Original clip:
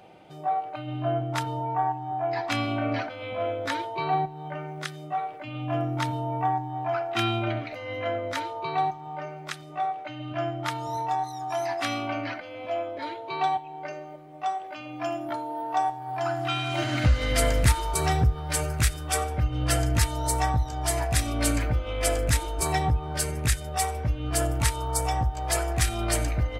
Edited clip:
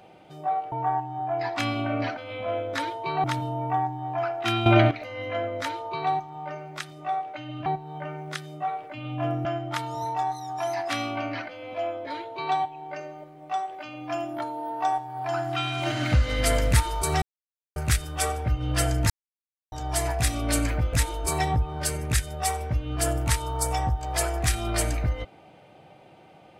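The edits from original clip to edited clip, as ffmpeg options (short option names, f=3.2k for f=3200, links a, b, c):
-filter_complex "[0:a]asplit=12[a][b][c][d][e][f][g][h][i][j][k][l];[a]atrim=end=0.722[m];[b]atrim=start=1.638:end=4.162[n];[c]atrim=start=5.948:end=7.372[o];[d]atrim=start=7.368:end=7.622,asetpts=PTS-STARTPTS,volume=11dB[p];[e]atrim=start=7.618:end=10.372[q];[f]atrim=start=4.158:end=5.952[r];[g]atrim=start=10.368:end=18.14,asetpts=PTS-STARTPTS,afade=t=out:st=7.768:d=0.004:c=hsin[s];[h]atrim=start=18.14:end=18.68,asetpts=PTS-STARTPTS,volume=0[t];[i]atrim=start=18.68:end=20.02,asetpts=PTS-STARTPTS,afade=t=in:d=0.004:c=hsin,afade=t=out:st=1.336:d=0.004:c=hsin[u];[j]atrim=start=20.02:end=20.64,asetpts=PTS-STARTPTS,volume=0[v];[k]atrim=start=20.64:end=21.852,asetpts=PTS-STARTPTS,afade=t=in:d=0.004:c=hsin[w];[l]atrim=start=22.268[x];[m][n]acrossfade=d=0.004:c1=hsin:c2=hsin[y];[y][o]acrossfade=d=0.004:c1=hsin:c2=hsin[z];[z][p]acrossfade=d=0.004:c1=hsin:c2=hsin[aa];[aa][q]acrossfade=d=0.004:c1=hsin:c2=hsin[ab];[ab][r]acrossfade=d=0.004:c1=hsin:c2=hsin[ac];[s][t][u][v][w]concat=n=5:v=0:a=1[ad];[ac][ad]acrossfade=d=0.004:c1=hsin:c2=hsin[ae];[ae][x]acrossfade=d=0.004:c1=hsin:c2=hsin"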